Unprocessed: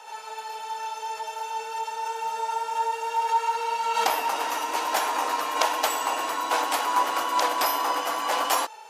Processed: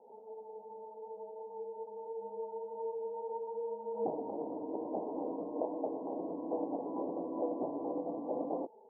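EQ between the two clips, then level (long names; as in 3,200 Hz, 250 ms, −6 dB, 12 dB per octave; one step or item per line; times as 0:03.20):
Gaussian smoothing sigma 19 samples
low-shelf EQ 130 Hz +8.5 dB
+5.0 dB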